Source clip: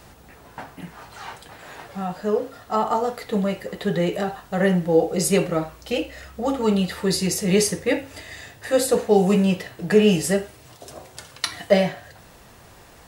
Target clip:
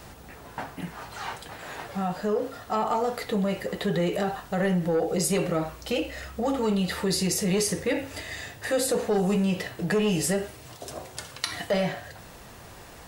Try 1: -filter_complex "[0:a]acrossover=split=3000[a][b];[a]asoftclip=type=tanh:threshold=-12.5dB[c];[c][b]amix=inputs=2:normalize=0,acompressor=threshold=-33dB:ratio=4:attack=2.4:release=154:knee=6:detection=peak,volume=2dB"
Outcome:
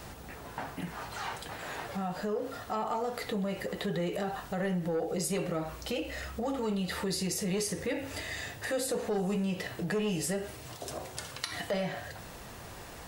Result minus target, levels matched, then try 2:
compressor: peak gain reduction +7 dB
-filter_complex "[0:a]acrossover=split=3000[a][b];[a]asoftclip=type=tanh:threshold=-12.5dB[c];[c][b]amix=inputs=2:normalize=0,acompressor=threshold=-23.5dB:ratio=4:attack=2.4:release=154:knee=6:detection=peak,volume=2dB"

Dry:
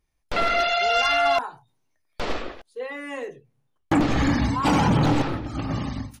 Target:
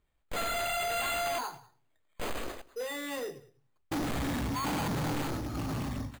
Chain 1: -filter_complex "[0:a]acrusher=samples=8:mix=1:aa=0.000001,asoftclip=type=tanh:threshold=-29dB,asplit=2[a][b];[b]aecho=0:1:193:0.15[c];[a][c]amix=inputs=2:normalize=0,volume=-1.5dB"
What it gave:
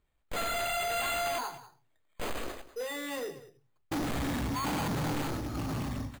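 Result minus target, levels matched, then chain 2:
echo-to-direct +7 dB
-filter_complex "[0:a]acrusher=samples=8:mix=1:aa=0.000001,asoftclip=type=tanh:threshold=-29dB,asplit=2[a][b];[b]aecho=0:1:193:0.0668[c];[a][c]amix=inputs=2:normalize=0,volume=-1.5dB"

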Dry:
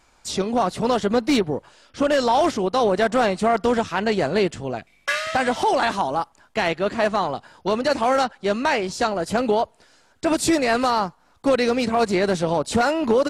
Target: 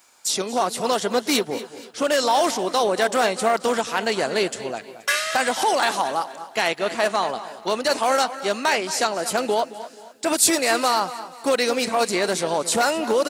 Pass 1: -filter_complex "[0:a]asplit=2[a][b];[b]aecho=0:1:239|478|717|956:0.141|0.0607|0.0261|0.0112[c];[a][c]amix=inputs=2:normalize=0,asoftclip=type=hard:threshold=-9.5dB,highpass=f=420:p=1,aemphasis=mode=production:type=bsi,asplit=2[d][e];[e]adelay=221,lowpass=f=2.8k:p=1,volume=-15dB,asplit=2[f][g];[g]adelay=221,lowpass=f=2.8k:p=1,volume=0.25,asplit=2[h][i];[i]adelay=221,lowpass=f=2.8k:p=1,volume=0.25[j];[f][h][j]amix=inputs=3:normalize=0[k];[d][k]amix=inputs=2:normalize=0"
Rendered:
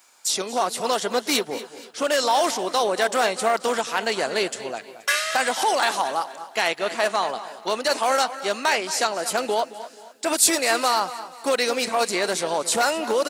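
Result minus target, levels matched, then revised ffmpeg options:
125 Hz band -5.0 dB
-filter_complex "[0:a]asplit=2[a][b];[b]aecho=0:1:239|478|717|956:0.141|0.0607|0.0261|0.0112[c];[a][c]amix=inputs=2:normalize=0,asoftclip=type=hard:threshold=-9.5dB,highpass=f=150:p=1,aemphasis=mode=production:type=bsi,asplit=2[d][e];[e]adelay=221,lowpass=f=2.8k:p=1,volume=-15dB,asplit=2[f][g];[g]adelay=221,lowpass=f=2.8k:p=1,volume=0.25,asplit=2[h][i];[i]adelay=221,lowpass=f=2.8k:p=1,volume=0.25[j];[f][h][j]amix=inputs=3:normalize=0[k];[d][k]amix=inputs=2:normalize=0"

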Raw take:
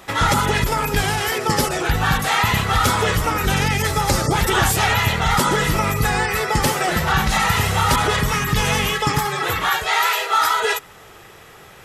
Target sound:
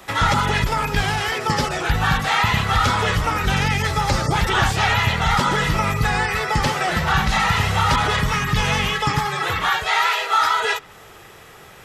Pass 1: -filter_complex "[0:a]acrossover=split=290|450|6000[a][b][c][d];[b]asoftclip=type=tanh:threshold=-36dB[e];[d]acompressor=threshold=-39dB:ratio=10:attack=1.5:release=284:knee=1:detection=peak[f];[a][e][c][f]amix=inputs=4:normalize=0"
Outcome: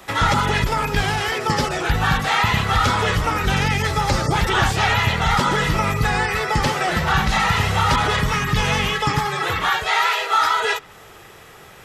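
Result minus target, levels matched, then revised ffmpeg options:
soft clip: distortion -5 dB
-filter_complex "[0:a]acrossover=split=290|450|6000[a][b][c][d];[b]asoftclip=type=tanh:threshold=-48dB[e];[d]acompressor=threshold=-39dB:ratio=10:attack=1.5:release=284:knee=1:detection=peak[f];[a][e][c][f]amix=inputs=4:normalize=0"

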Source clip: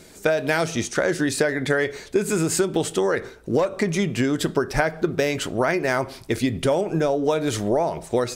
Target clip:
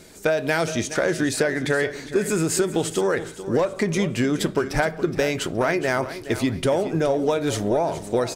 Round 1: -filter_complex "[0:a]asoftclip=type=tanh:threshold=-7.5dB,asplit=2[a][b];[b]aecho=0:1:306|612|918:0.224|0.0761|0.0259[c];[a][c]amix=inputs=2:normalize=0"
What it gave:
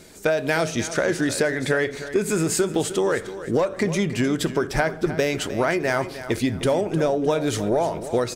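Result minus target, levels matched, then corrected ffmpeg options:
echo 0.113 s early
-filter_complex "[0:a]asoftclip=type=tanh:threshold=-7.5dB,asplit=2[a][b];[b]aecho=0:1:419|838|1257:0.224|0.0761|0.0259[c];[a][c]amix=inputs=2:normalize=0"

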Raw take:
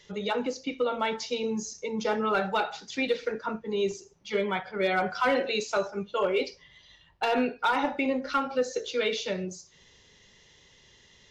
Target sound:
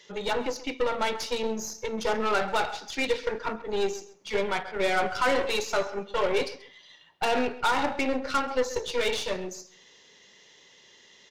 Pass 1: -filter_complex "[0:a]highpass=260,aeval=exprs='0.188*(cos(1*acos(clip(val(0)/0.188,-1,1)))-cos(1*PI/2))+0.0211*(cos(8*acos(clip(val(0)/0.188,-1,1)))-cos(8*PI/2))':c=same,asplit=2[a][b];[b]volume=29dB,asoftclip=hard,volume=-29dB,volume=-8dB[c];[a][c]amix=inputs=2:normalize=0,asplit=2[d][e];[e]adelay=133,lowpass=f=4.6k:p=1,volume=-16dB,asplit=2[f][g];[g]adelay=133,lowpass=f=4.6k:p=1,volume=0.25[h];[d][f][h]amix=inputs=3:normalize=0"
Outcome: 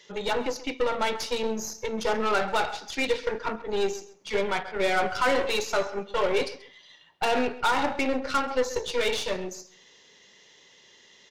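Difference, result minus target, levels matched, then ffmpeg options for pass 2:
overloaded stage: distortion -6 dB
-filter_complex "[0:a]highpass=260,aeval=exprs='0.188*(cos(1*acos(clip(val(0)/0.188,-1,1)))-cos(1*PI/2))+0.0211*(cos(8*acos(clip(val(0)/0.188,-1,1)))-cos(8*PI/2))':c=same,asplit=2[a][b];[b]volume=39dB,asoftclip=hard,volume=-39dB,volume=-8dB[c];[a][c]amix=inputs=2:normalize=0,asplit=2[d][e];[e]adelay=133,lowpass=f=4.6k:p=1,volume=-16dB,asplit=2[f][g];[g]adelay=133,lowpass=f=4.6k:p=1,volume=0.25[h];[d][f][h]amix=inputs=3:normalize=0"

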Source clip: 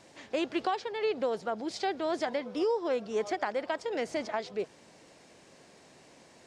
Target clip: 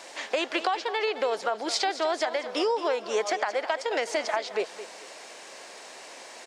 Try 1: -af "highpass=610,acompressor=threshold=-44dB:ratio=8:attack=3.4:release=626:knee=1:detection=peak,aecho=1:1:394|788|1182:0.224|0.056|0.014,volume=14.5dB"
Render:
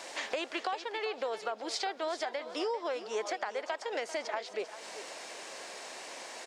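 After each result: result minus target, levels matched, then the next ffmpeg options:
echo 0.177 s late; compressor: peak gain reduction +8 dB
-af "highpass=610,acompressor=threshold=-44dB:ratio=8:attack=3.4:release=626:knee=1:detection=peak,aecho=1:1:217|434|651:0.224|0.056|0.014,volume=14.5dB"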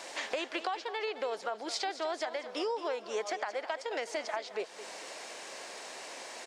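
compressor: peak gain reduction +8 dB
-af "highpass=610,acompressor=threshold=-35dB:ratio=8:attack=3.4:release=626:knee=1:detection=peak,aecho=1:1:217|434|651:0.224|0.056|0.014,volume=14.5dB"

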